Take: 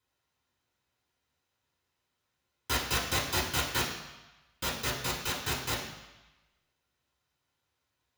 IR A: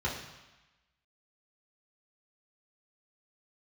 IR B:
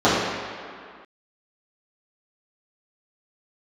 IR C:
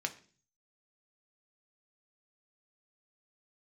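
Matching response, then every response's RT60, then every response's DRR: A; 1.1, 2.1, 0.40 s; -5.0, -12.5, 5.0 dB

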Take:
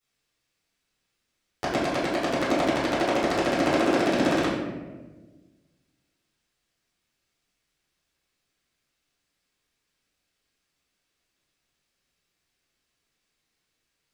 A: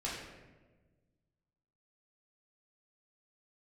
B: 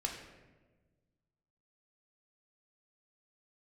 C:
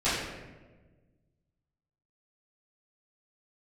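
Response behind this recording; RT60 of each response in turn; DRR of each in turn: C; 1.3, 1.3, 1.3 s; -7.0, 0.5, -15.5 dB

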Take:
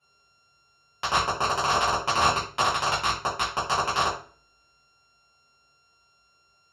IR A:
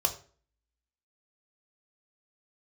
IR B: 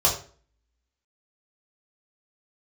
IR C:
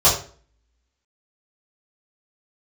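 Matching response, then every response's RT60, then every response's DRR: C; 0.45, 0.45, 0.45 s; 3.5, -5.0, -11.5 dB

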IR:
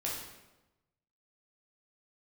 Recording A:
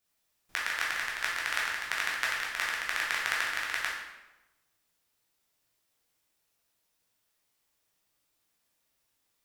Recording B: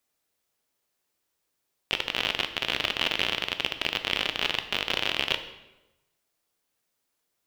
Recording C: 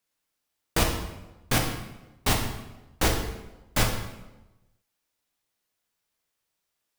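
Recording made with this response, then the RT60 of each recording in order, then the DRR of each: A; 1.0, 1.0, 1.0 s; -4.5, 8.5, 1.0 dB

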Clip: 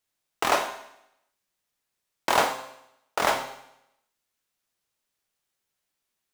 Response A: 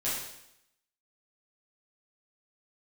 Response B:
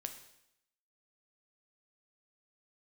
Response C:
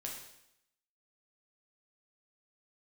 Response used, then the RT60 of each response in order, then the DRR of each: B; 0.80, 0.80, 0.80 s; -10.0, 6.0, -1.5 dB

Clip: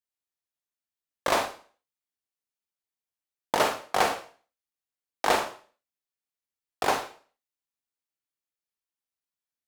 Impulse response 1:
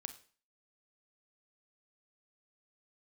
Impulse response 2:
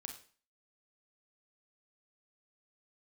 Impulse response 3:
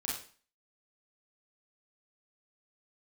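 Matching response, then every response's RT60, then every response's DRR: 2; 0.40, 0.40, 0.40 s; 9.0, 3.5, -5.5 dB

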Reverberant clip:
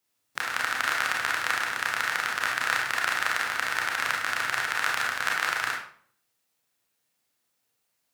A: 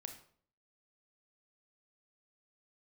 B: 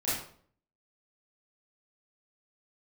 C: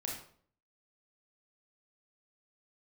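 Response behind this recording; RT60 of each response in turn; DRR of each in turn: C; 0.55, 0.55, 0.55 s; 5.0, -11.5, -2.0 dB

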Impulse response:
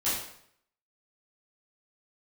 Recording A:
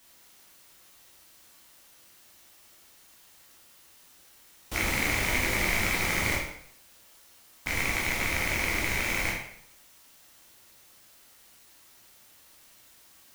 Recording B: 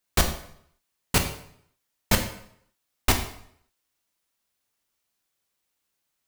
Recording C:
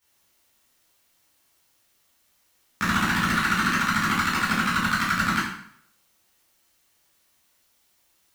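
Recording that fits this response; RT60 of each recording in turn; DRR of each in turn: C; 0.65, 0.65, 0.65 s; -3.5, 4.5, -12.0 dB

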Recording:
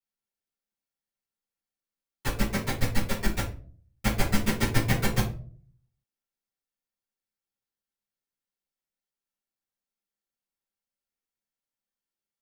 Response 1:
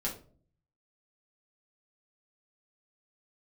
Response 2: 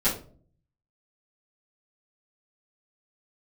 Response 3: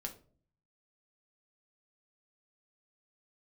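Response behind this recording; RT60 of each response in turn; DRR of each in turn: 2; 0.45, 0.45, 0.45 s; -5.0, -14.0, 2.5 dB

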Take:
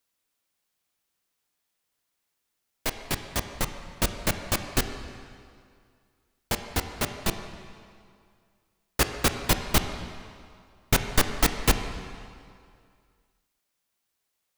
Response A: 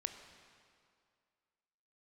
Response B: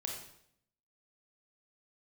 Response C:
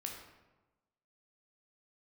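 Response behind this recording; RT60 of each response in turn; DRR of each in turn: A; 2.2, 0.70, 1.1 s; 7.0, 0.0, 0.5 dB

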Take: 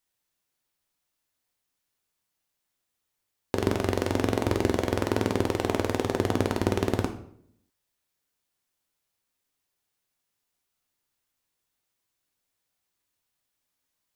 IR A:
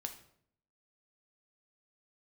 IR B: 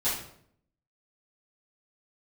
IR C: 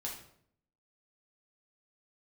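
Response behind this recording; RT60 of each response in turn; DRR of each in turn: A; 0.65, 0.65, 0.65 s; 5.0, -13.0, -3.0 dB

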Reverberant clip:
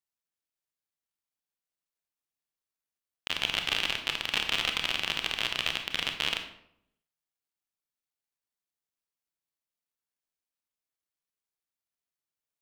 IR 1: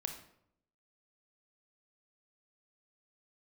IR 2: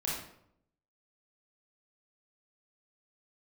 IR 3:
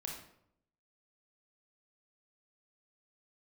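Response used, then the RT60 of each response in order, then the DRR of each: 1; 0.70, 0.70, 0.70 s; 4.5, -5.5, -1.0 dB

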